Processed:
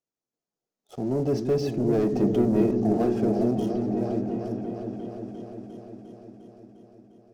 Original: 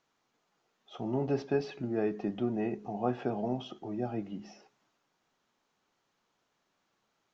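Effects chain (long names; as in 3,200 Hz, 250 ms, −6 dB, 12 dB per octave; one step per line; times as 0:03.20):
source passing by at 0:02.27, 7 m/s, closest 3.9 metres
leveller curve on the samples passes 3
flat-topped bell 1,800 Hz −10.5 dB 2.5 octaves
echo whose low-pass opens from repeat to repeat 352 ms, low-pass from 400 Hz, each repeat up 1 octave, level −3 dB
level +4 dB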